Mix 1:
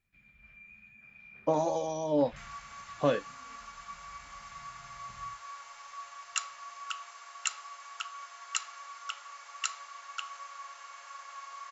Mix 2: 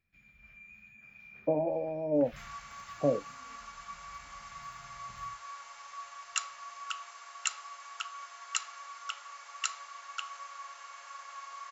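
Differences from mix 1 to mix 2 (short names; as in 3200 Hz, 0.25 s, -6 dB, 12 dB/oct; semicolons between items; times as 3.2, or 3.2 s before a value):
speech: add Chebyshev band-pass 110–680 Hz, order 3; first sound: remove LPF 4600 Hz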